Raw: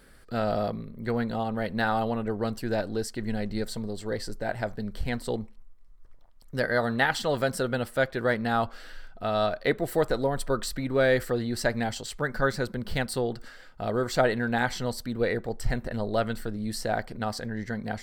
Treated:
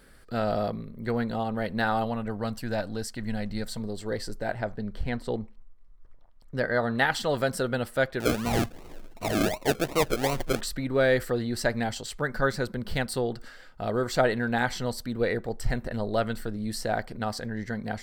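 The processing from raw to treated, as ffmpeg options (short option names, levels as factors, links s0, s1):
-filter_complex "[0:a]asettb=1/sr,asplit=3[s0][s1][s2];[s0]atrim=end=2.044[s3];[s1]atrim=start=2.04:end=3.8,asetpts=PTS-STARTPTS,afade=t=in:d=0.004:c=qsin,afade=t=out:st=1.756:d=0.004:c=qsin,equalizer=f=380:t=o:w=0.53:g=-9.5[s4];[s2]atrim=start=3.796[s5];[s3][s4]acrossfade=d=0.004:c1=hsin:c2=qsin[s6];[s6][s5]acrossfade=d=0.004:c1=qsin:c2=hsin,asettb=1/sr,asplit=3[s7][s8][s9];[s7]atrim=end=4.544[s10];[s8]atrim=start=4.54:end=6.95,asetpts=PTS-STARTPTS,afade=t=in:d=0.004:c=qsin,afade=t=out:st=2.406:d=0.004:c=qsin,lowpass=f=2900:p=1[s11];[s9]atrim=start=6.946[s12];[s10][s11]acrossfade=d=0.004:c1=hsin:c2=qsin[s13];[s13][s12]acrossfade=d=0.004:c1=qsin:c2=hsin,asettb=1/sr,asplit=3[s14][s15][s16];[s14]atrim=end=8.204[s17];[s15]atrim=start=8.2:end=10.61,asetpts=PTS-STARTPTS,afade=t=in:d=0.004:c=qsin,afade=t=out:st=2.406:d=0.004:c=qsin,acrusher=samples=37:mix=1:aa=0.000001:lfo=1:lforange=22.2:lforate=2.7[s18];[s16]atrim=start=10.606[s19];[s17][s18]acrossfade=d=0.004:c1=hsin:c2=qsin[s20];[s20][s19]acrossfade=d=0.004:c1=qsin:c2=hsin"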